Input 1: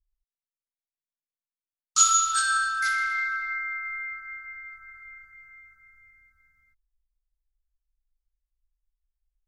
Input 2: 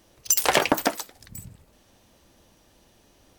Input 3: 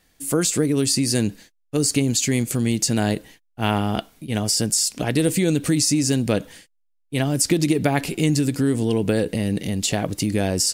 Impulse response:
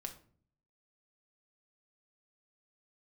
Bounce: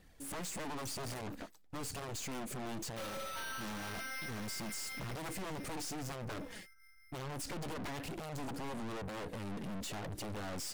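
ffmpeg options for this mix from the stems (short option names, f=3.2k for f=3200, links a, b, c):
-filter_complex "[0:a]adynamicequalizer=threshold=0.01:dfrequency=3300:dqfactor=0.74:tfrequency=3300:tqfactor=0.74:attack=5:release=100:ratio=0.375:range=3.5:mode=boostabove:tftype=bell,acrusher=samples=6:mix=1:aa=0.000001,adelay=1000,volume=-5.5dB[a];[1:a]afwtdn=0.0355,bass=f=250:g=14,treble=f=4k:g=-1,adelay=550,volume=-11dB[b];[2:a]highshelf=f=2.1k:g=-10,flanger=delay=0.2:depth=5.2:regen=37:speed=0.98:shape=triangular,aeval=exprs='0.299*sin(PI/2*5.62*val(0)/0.299)':c=same,volume=-11dB[c];[a][b][c]amix=inputs=3:normalize=0,aeval=exprs='(tanh(63.1*val(0)+0.65)-tanh(0.65))/63.1':c=same,alimiter=level_in=13dB:limit=-24dB:level=0:latency=1:release=47,volume=-13dB"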